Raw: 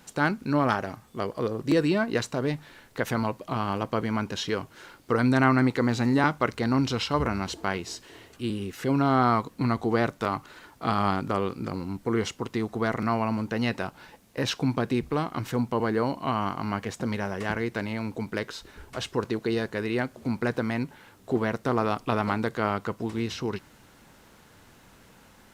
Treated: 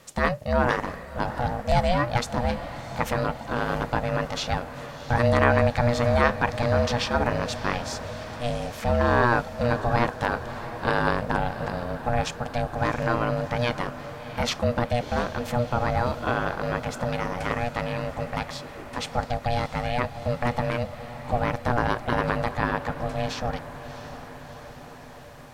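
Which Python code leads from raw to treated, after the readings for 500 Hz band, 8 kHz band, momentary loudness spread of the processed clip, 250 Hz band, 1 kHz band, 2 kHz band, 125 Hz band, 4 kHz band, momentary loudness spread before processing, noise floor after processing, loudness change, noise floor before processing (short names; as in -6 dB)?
+3.0 dB, +2.0 dB, 13 LU, -3.5 dB, +3.0 dB, +3.5 dB, +3.0 dB, +2.0 dB, 10 LU, -41 dBFS, +1.5 dB, -56 dBFS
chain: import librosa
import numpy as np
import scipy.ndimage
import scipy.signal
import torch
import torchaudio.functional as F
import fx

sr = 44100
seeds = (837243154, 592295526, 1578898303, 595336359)

y = x * np.sin(2.0 * np.pi * 360.0 * np.arange(len(x)) / sr)
y = fx.echo_diffused(y, sr, ms=688, feedback_pct=65, wet_db=-13)
y = F.gain(torch.from_numpy(y), 4.5).numpy()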